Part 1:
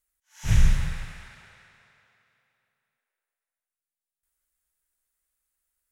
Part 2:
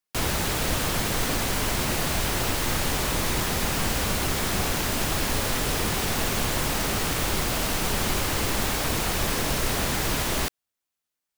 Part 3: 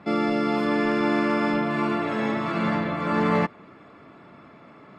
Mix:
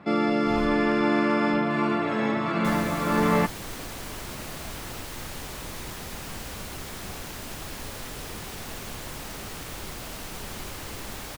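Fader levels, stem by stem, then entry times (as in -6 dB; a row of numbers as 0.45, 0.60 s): -19.0, -11.5, 0.0 dB; 0.00, 2.50, 0.00 s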